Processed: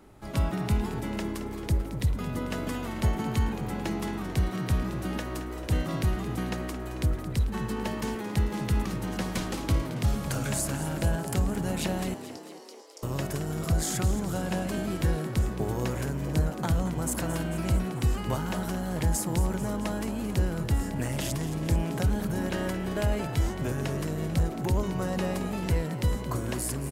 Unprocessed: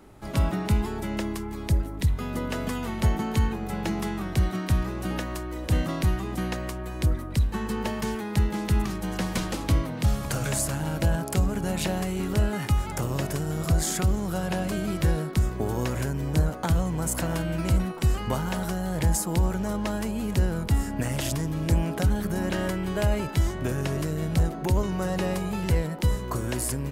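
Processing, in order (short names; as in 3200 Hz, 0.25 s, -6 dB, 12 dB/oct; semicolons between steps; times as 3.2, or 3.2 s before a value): 12.14–13.03 ladder band-pass 5500 Hz, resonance 65%; on a send: frequency-shifting echo 0.221 s, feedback 62%, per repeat +64 Hz, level -12 dB; on the sum: gain -3 dB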